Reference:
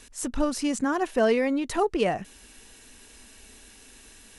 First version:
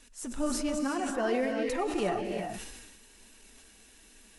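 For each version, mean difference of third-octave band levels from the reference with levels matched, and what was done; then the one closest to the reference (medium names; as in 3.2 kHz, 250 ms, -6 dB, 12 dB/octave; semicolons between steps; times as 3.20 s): 5.5 dB: flange 1.2 Hz, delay 3.1 ms, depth 7.5 ms, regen +32%; gated-style reverb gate 380 ms rising, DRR 2.5 dB; decay stretcher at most 38 dB/s; trim -4.5 dB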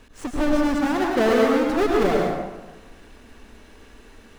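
9.0 dB: square wave that keeps the level; low-pass 1.8 kHz 6 dB/octave; plate-style reverb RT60 1.2 s, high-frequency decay 0.55×, pre-delay 85 ms, DRR -1 dB; trim -2 dB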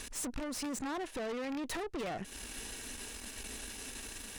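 13.5 dB: rattle on loud lows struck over -31 dBFS, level -22 dBFS; compression 12:1, threshold -35 dBFS, peak gain reduction 18 dB; valve stage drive 45 dB, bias 0.7; trim +9.5 dB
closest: first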